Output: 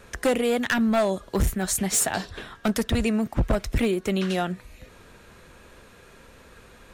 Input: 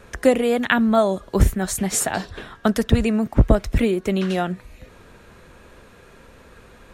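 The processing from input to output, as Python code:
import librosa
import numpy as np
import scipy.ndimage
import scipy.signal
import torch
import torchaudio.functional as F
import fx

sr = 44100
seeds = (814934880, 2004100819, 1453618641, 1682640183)

y = fx.high_shelf(x, sr, hz=2200.0, db=5.0)
y = np.clip(y, -10.0 ** (-13.5 / 20.0), 10.0 ** (-13.5 / 20.0))
y = y * librosa.db_to_amplitude(-3.5)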